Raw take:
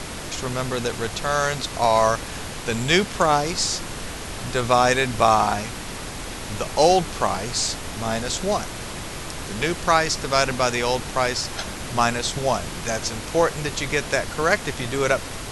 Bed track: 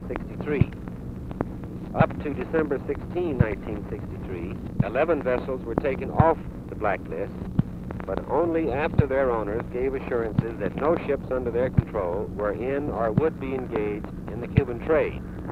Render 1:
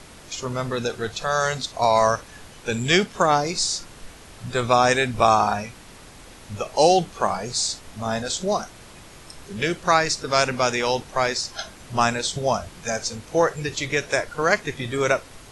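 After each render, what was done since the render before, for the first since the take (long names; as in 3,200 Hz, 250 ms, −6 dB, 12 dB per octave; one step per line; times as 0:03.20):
noise reduction from a noise print 12 dB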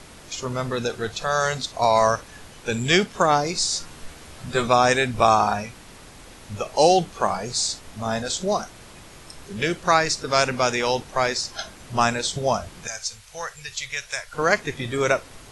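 0:03.71–0:04.68: double-tracking delay 13 ms −3.5 dB
0:12.87–0:14.33: guitar amp tone stack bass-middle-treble 10-0-10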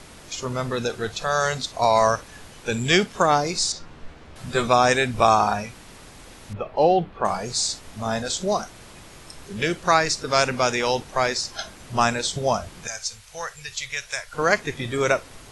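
0:03.72–0:04.36: head-to-tape spacing loss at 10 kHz 22 dB
0:06.53–0:07.25: high-frequency loss of the air 430 metres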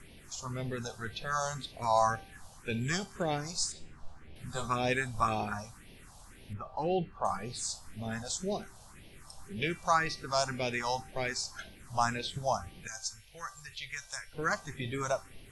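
all-pass phaser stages 4, 1.9 Hz, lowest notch 330–1,300 Hz
tuned comb filter 390 Hz, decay 0.46 s, mix 60%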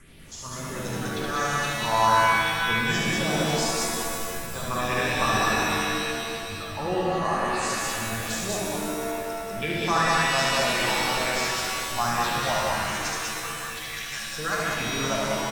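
loudspeakers that aren't time-aligned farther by 25 metres −3 dB, 67 metres −1 dB
reverb with rising layers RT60 2.4 s, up +7 semitones, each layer −2 dB, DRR 0 dB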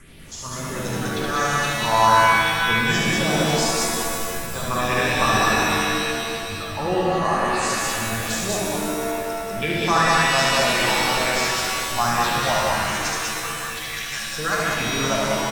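level +4.5 dB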